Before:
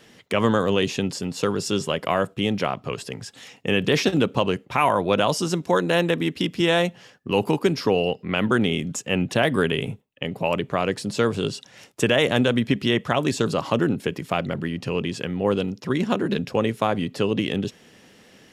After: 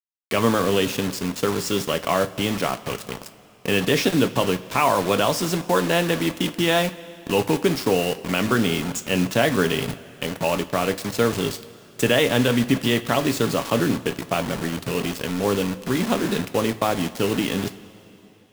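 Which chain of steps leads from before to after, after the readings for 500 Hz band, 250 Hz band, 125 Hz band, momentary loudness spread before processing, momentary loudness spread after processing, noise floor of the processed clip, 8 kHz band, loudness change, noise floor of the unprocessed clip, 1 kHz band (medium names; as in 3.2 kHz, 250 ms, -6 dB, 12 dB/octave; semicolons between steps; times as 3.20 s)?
+0.5 dB, +0.5 dB, 0.0 dB, 8 LU, 7 LU, -49 dBFS, +5.0 dB, +1.0 dB, -54 dBFS, +1.0 dB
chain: bit crusher 5-bit; two-slope reverb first 0.25 s, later 3.3 s, from -19 dB, DRR 8.5 dB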